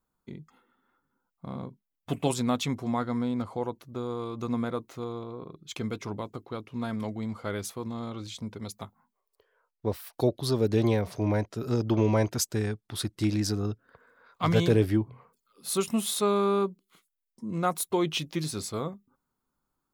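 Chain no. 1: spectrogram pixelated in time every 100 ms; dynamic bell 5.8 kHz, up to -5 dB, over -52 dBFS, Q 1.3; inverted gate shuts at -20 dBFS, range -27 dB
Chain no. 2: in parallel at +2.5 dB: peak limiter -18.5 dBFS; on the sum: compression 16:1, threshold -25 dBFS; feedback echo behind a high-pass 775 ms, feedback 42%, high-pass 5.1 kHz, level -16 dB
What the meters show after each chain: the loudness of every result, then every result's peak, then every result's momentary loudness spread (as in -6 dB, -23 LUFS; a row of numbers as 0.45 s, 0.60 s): -37.0 LUFS, -31.0 LUFS; -18.0 dBFS, -14.0 dBFS; 19 LU, 11 LU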